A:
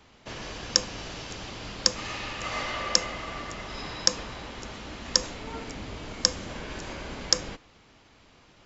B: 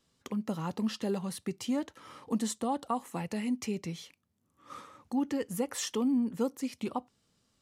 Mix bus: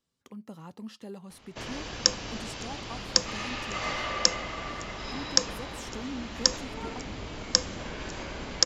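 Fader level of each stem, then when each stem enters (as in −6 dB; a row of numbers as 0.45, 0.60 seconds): 0.0, −10.0 decibels; 1.30, 0.00 seconds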